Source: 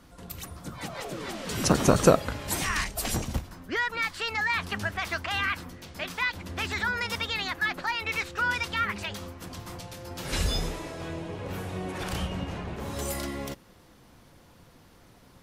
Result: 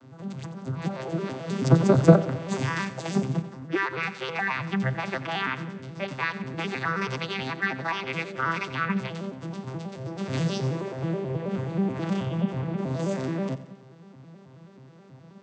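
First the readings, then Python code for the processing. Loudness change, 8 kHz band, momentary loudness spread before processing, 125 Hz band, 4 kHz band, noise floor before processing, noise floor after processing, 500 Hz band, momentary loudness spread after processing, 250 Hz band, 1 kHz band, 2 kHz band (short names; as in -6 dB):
+1.5 dB, -11.0 dB, 14 LU, +7.5 dB, -5.0 dB, -56 dBFS, -50 dBFS, +2.5 dB, 13 LU, +6.5 dB, +0.5 dB, -1.5 dB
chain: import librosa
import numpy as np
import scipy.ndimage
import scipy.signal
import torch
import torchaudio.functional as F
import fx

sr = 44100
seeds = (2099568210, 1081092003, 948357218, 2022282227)

p1 = fx.vocoder_arp(x, sr, chord='major triad', root=48, every_ms=107)
p2 = fx.rider(p1, sr, range_db=4, speed_s=0.5)
p3 = p1 + F.gain(torch.from_numpy(p2), -1.0).numpy()
p4 = fx.echo_feedback(p3, sr, ms=89, feedback_pct=53, wet_db=-15.0)
y = F.gain(torch.from_numpy(p4), -1.0).numpy()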